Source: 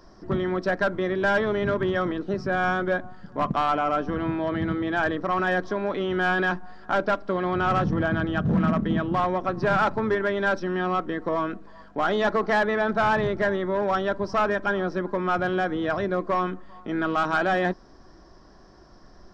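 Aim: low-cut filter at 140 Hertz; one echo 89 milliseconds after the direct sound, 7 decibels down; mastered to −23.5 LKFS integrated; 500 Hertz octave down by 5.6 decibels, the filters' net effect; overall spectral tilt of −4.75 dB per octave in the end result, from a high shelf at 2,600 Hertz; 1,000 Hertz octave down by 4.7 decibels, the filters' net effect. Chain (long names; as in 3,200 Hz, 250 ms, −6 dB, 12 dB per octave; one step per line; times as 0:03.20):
high-pass filter 140 Hz
parametric band 500 Hz −6.5 dB
parametric band 1,000 Hz −3.5 dB
high-shelf EQ 2,600 Hz −4.5 dB
single-tap delay 89 ms −7 dB
level +5 dB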